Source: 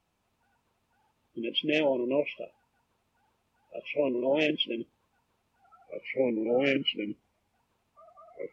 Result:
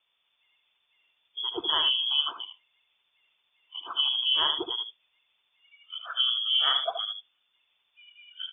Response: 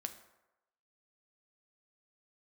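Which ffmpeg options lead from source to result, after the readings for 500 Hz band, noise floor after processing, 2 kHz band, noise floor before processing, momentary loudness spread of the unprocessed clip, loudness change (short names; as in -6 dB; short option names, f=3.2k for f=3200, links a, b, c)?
-13.5 dB, -75 dBFS, -4.5 dB, -76 dBFS, 19 LU, +3.5 dB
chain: -filter_complex "[0:a]lowshelf=f=160:g=4,asplit=2[a][b];[b]aecho=0:1:75:0.422[c];[a][c]amix=inputs=2:normalize=0,lowpass=f=3.1k:t=q:w=0.5098,lowpass=f=3.1k:t=q:w=0.6013,lowpass=f=3.1k:t=q:w=0.9,lowpass=f=3.1k:t=q:w=2.563,afreqshift=-3600"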